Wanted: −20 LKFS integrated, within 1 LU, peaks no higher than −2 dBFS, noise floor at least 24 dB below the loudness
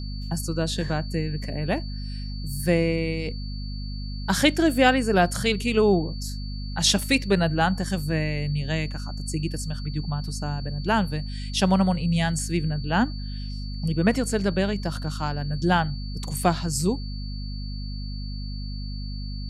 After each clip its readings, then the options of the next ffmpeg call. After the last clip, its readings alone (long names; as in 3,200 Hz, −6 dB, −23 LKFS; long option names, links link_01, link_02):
mains hum 50 Hz; hum harmonics up to 250 Hz; level of the hum −29 dBFS; interfering tone 4,500 Hz; level of the tone −42 dBFS; integrated loudness −25.5 LKFS; sample peak −5.0 dBFS; target loudness −20.0 LKFS
→ -af "bandreject=frequency=50:width_type=h:width=4,bandreject=frequency=100:width_type=h:width=4,bandreject=frequency=150:width_type=h:width=4,bandreject=frequency=200:width_type=h:width=4,bandreject=frequency=250:width_type=h:width=4"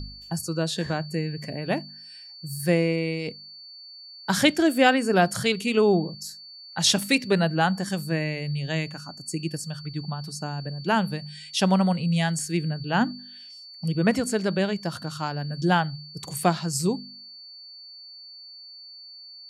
mains hum none found; interfering tone 4,500 Hz; level of the tone −42 dBFS
→ -af "bandreject=frequency=4500:width=30"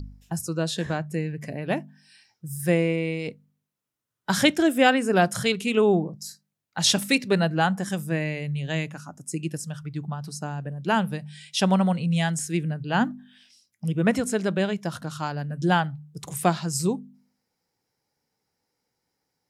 interfering tone none found; integrated loudness −25.5 LKFS; sample peak −5.0 dBFS; target loudness −20.0 LKFS
→ -af "volume=5.5dB,alimiter=limit=-2dB:level=0:latency=1"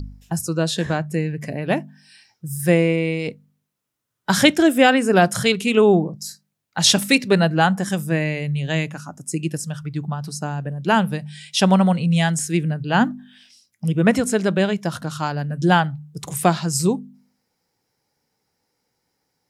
integrated loudness −20.0 LKFS; sample peak −2.0 dBFS; background noise floor −75 dBFS